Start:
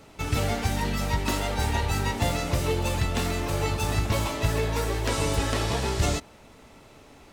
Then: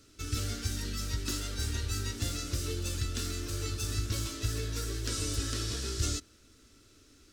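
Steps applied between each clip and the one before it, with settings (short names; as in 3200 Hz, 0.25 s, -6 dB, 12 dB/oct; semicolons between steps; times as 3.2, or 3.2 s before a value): EQ curve 110 Hz 0 dB, 150 Hz -12 dB, 320 Hz +1 dB, 870 Hz -23 dB, 1400 Hz -1 dB, 2100 Hz -8 dB, 5300 Hz +7 dB, 14000 Hz +1 dB; gain -6.5 dB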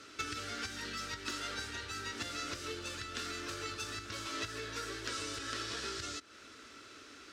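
compressor 12:1, threshold -41 dBFS, peak gain reduction 16 dB; band-pass 1400 Hz, Q 0.74; gain +15 dB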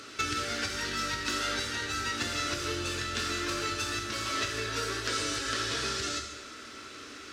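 plate-style reverb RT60 1.2 s, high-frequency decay 1×, DRR 3 dB; upward compressor, threshold -57 dBFS; gain +6.5 dB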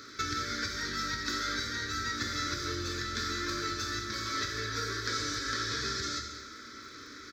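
fixed phaser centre 2800 Hz, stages 6; crackle 66/s -50 dBFS; echo 0.209 s -13.5 dB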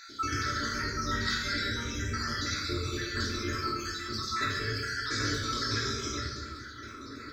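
random spectral dropouts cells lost 66%; shoebox room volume 1000 m³, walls mixed, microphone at 3 m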